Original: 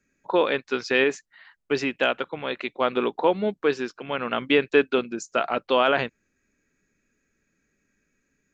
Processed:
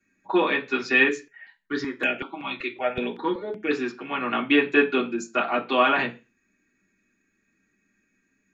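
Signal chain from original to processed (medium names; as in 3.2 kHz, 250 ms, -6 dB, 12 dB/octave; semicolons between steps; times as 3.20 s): reverberation RT60 0.30 s, pre-delay 3 ms, DRR -5 dB; 1.09–3.71 s: stepped phaser 5.3 Hz 210–3900 Hz; trim -5.5 dB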